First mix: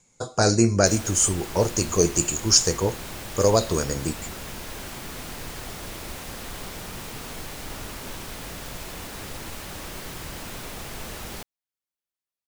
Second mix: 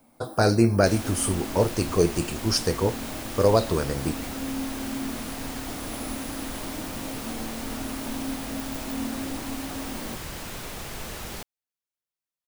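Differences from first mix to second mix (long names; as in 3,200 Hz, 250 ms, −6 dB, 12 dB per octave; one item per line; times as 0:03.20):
speech: remove low-pass with resonance 6,900 Hz, resonance Q 14
first sound: unmuted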